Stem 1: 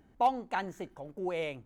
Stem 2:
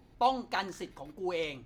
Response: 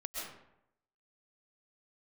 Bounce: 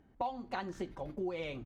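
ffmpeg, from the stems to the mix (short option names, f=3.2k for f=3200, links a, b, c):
-filter_complex "[0:a]volume=-2.5dB,asplit=2[a][b];[1:a]lowshelf=f=380:g=6.5,adelay=2,volume=1dB[c];[b]apad=whole_len=72997[d];[c][d]sidechaingate=range=-33dB:threshold=-52dB:ratio=16:detection=peak[e];[a][e]amix=inputs=2:normalize=0,lowpass=f=3.2k:p=1,acompressor=threshold=-35dB:ratio=5"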